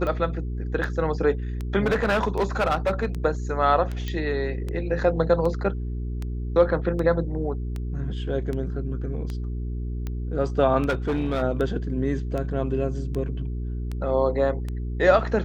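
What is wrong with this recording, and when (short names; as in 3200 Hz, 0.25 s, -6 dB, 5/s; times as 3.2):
hum 60 Hz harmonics 7 -29 dBFS
tick 78 rpm -19 dBFS
1.85–3.06 clipped -17.5 dBFS
4.08 pop -18 dBFS
10.89–11.43 clipped -20 dBFS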